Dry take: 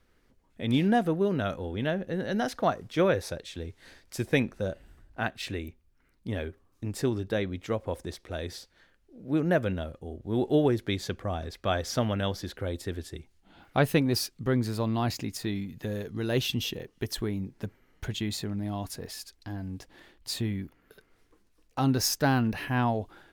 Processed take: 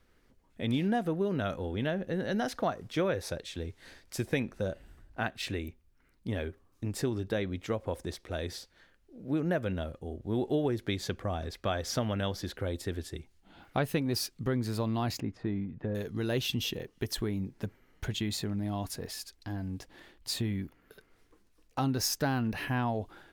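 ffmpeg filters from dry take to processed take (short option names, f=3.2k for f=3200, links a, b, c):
-filter_complex "[0:a]asettb=1/sr,asplit=3[a][b][c];[a]atrim=end=15.204[d];[b]atrim=start=15.2:end=15.95,asetpts=PTS-STARTPTS,afade=t=in:d=0.004:c=qsin,afade=t=out:st=0.746:d=0.004:c=qsin,lowpass=1.4k[e];[c]atrim=start=15.946[f];[d][e]acrossfade=d=0.004:c1=hsin:c2=qsin[g];[g][f]acrossfade=d=0.004:c1=qsin:c2=hsin,acompressor=threshold=-28dB:ratio=2.5"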